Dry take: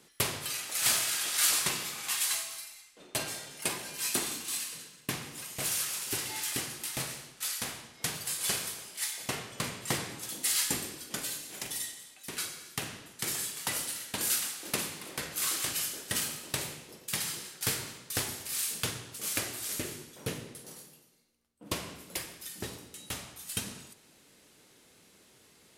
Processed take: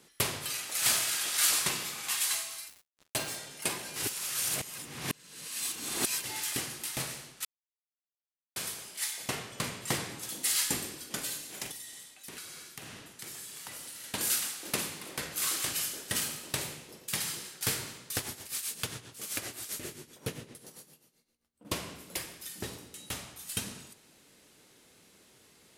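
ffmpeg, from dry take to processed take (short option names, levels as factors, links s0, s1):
-filter_complex "[0:a]asettb=1/sr,asplit=3[s0][s1][s2];[s0]atrim=end=2.684[s3];[s1]atrim=start=2.68:end=3.36,asetpts=PTS-STARTPTS,afade=t=in:d=0.004:c=qsin,afade=t=out:st=0.676:d=0.004:c=qsin,acrusher=bits=6:mix=0:aa=0.5[s4];[s2]atrim=start=3.356[s5];[s3][s4]acrossfade=d=0.004:c1=hsin:c2=qsin[s6];[s6][s5]acrossfade=d=0.004:c1=qsin:c2=hsin,asettb=1/sr,asplit=3[s7][s8][s9];[s7]atrim=end=11.714[s10];[s8]atrim=start=11.71:end=14.04,asetpts=PTS-STARTPTS,afade=t=in:d=0.004:c=qsin,afade=t=out:st=2.326:d=0.004:c=qsin,acompressor=threshold=0.00891:ratio=5:attack=3.2:release=140:knee=1:detection=peak[s11];[s9]atrim=start=14.036[s12];[s10][s11]acrossfade=d=0.004:c1=hsin:c2=qsin[s13];[s13][s12]acrossfade=d=0.004:c1=qsin:c2=hsin,asettb=1/sr,asplit=3[s14][s15][s16];[s14]atrim=end=18.164[s17];[s15]atrim=start=18.16:end=21.65,asetpts=PTS-STARTPTS,afade=t=in:d=0.004:c=qsin,afade=t=out:st=3.486:d=0.004:c=qsin,tremolo=f=7.6:d=0.7[s18];[s16]atrim=start=21.646[s19];[s17][s18]acrossfade=d=0.004:c1=hsin:c2=qsin[s20];[s20][s19]acrossfade=d=0.004:c1=qsin:c2=hsin,asplit=5[s21][s22][s23][s24][s25];[s21]atrim=end=3.962[s26];[s22]atrim=start=3.958:end=6.242,asetpts=PTS-STARTPTS,areverse[s27];[s23]atrim=start=6.238:end=7.45,asetpts=PTS-STARTPTS,afade=t=out:st=1.208:d=0.004:c=hsin[s28];[s24]atrim=start=7.45:end=8.56,asetpts=PTS-STARTPTS,volume=0[s29];[s25]atrim=start=8.56,asetpts=PTS-STARTPTS,afade=t=in:d=0.004:c=hsin[s30];[s26][s27]acrossfade=d=0.004:c1=hsin:c2=hsin[s31];[s28][s29][s30]concat=n=3:v=0:a=1[s32];[s31][s32]acrossfade=d=0.004:c1=hsin:c2=hsin"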